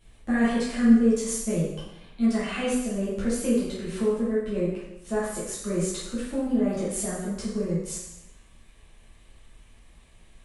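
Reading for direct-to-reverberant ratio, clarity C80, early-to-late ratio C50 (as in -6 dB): -10.0 dB, 4.0 dB, 0.0 dB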